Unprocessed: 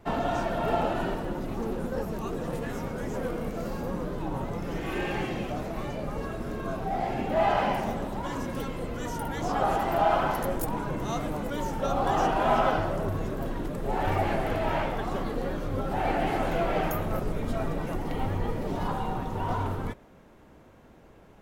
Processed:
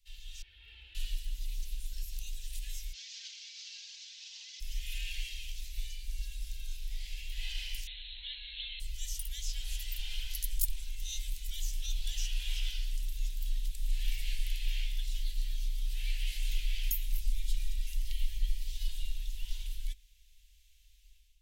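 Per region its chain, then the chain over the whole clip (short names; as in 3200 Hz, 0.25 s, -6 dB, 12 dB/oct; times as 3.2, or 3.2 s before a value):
0.42–0.95 HPF 67 Hz 24 dB/oct + air absorption 490 m
2.93–4.6 CVSD 32 kbps + elliptic high-pass 730 Hz, stop band 80 dB + comb 4.4 ms, depth 99%
7.87–8.8 brick-wall FIR low-pass 4300 Hz + tilt +3 dB/oct + fast leveller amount 50%
whole clip: inverse Chebyshev band-stop 110–1300 Hz, stop band 50 dB; AGC gain up to 10.5 dB; gain -6 dB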